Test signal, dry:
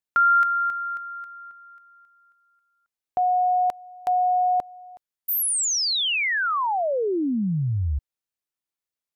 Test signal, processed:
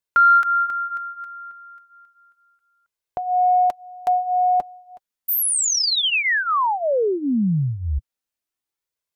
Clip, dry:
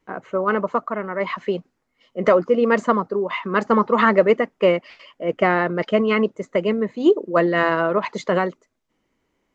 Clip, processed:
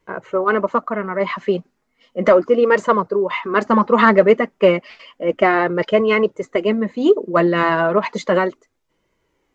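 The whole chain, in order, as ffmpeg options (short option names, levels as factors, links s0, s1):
-af "flanger=delay=1.9:depth=3.2:regen=-37:speed=0.33:shape=sinusoidal,acontrast=27,volume=1.26"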